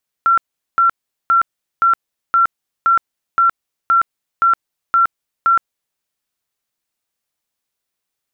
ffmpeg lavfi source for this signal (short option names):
-f lavfi -i "aevalsrc='0.355*sin(2*PI*1360*mod(t,0.52))*lt(mod(t,0.52),158/1360)':d=5.72:s=44100"